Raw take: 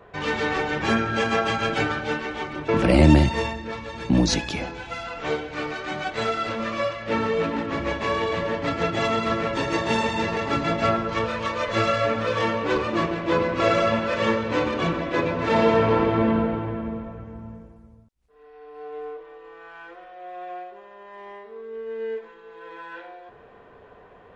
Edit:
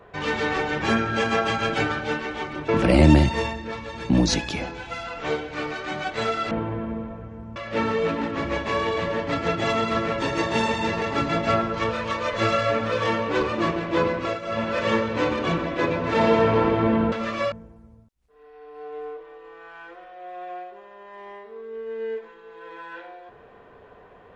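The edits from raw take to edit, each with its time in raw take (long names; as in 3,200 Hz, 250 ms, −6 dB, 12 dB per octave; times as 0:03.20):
0:06.51–0:06.91: swap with 0:16.47–0:17.52
0:13.34–0:14.18: duck −16 dB, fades 0.41 s equal-power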